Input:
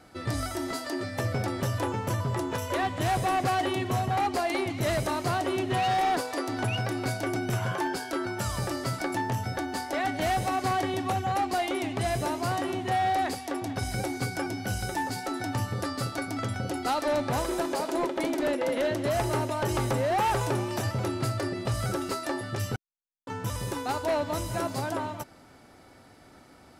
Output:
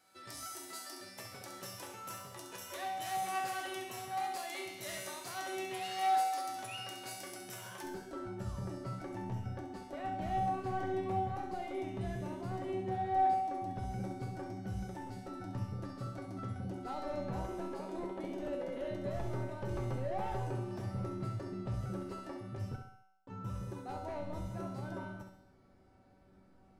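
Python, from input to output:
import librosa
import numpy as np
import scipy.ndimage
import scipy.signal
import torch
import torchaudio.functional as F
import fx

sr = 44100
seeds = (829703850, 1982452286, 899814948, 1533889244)

y = fx.tilt_eq(x, sr, slope=fx.steps((0.0, 3.0), (7.82, -3.0)))
y = fx.comb_fb(y, sr, f0_hz=190.0, decay_s=0.88, harmonics='all', damping=0.0, mix_pct=90)
y = fx.echo_feedback(y, sr, ms=67, feedback_pct=39, wet_db=-8.0)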